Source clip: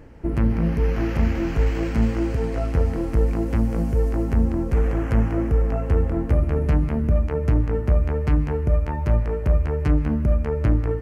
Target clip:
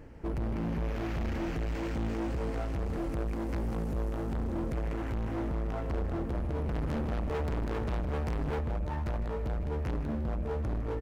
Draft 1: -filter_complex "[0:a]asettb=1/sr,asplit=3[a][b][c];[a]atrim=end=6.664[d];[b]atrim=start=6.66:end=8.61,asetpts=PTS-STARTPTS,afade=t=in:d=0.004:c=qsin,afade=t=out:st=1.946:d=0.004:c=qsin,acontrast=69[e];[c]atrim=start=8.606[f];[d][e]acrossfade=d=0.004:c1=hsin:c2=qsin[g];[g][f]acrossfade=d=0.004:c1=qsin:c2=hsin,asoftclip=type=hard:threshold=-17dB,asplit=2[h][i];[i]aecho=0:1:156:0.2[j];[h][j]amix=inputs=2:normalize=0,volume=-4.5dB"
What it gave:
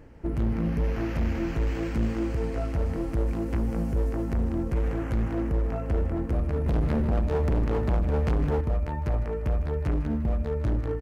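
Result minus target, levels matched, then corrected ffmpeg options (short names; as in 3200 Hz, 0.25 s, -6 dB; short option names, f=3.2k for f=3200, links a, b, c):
hard clip: distortion -5 dB
-filter_complex "[0:a]asettb=1/sr,asplit=3[a][b][c];[a]atrim=end=6.664[d];[b]atrim=start=6.66:end=8.61,asetpts=PTS-STARTPTS,afade=t=in:d=0.004:c=qsin,afade=t=out:st=1.946:d=0.004:c=qsin,acontrast=69[e];[c]atrim=start=8.606[f];[d][e]acrossfade=d=0.004:c1=hsin:c2=qsin[g];[g][f]acrossfade=d=0.004:c1=qsin:c2=hsin,asoftclip=type=hard:threshold=-26dB,asplit=2[h][i];[i]aecho=0:1:156:0.2[j];[h][j]amix=inputs=2:normalize=0,volume=-4.5dB"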